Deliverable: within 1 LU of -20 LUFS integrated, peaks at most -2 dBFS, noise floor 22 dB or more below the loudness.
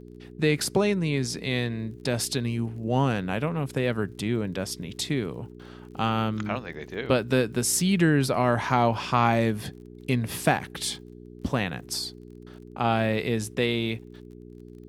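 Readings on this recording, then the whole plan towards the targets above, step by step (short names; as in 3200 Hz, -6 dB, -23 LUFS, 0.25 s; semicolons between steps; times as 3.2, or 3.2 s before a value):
ticks 33/s; hum 60 Hz; harmonics up to 420 Hz; hum level -44 dBFS; loudness -26.5 LUFS; peak -6.5 dBFS; loudness target -20.0 LUFS
-> de-click; de-hum 60 Hz, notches 7; gain +6.5 dB; limiter -2 dBFS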